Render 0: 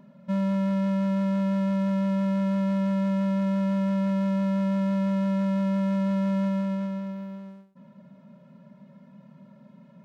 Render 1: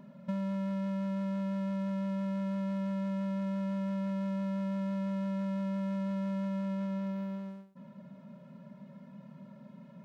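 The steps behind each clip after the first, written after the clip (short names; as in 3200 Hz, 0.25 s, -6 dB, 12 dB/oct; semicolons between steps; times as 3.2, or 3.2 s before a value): compressor 10:1, threshold -32 dBFS, peak gain reduction 9 dB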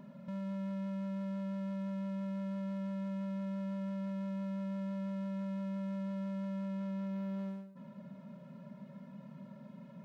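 limiter -36 dBFS, peak gain reduction 9.5 dB; reverb RT60 1.4 s, pre-delay 32 ms, DRR 15 dB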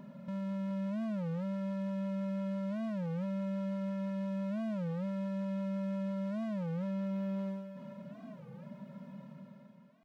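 ending faded out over 0.93 s; thinning echo 0.424 s, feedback 65%, high-pass 330 Hz, level -11 dB; record warp 33 1/3 rpm, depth 250 cents; gain +2 dB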